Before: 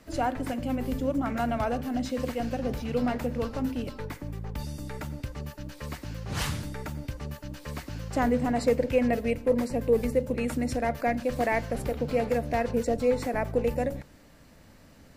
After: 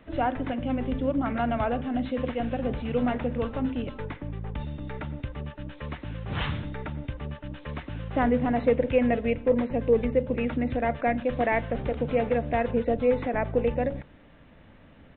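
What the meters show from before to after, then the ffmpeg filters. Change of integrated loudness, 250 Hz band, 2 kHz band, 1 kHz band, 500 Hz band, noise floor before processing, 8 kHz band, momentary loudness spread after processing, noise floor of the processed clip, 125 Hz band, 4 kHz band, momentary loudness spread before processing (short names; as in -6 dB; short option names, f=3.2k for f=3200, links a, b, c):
+1.5 dB, +1.5 dB, +1.5 dB, +1.5 dB, +1.5 dB, -54 dBFS, under -35 dB, 13 LU, -53 dBFS, +1.5 dB, -1.5 dB, 12 LU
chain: -af "aresample=8000,aresample=44100,volume=1.5dB"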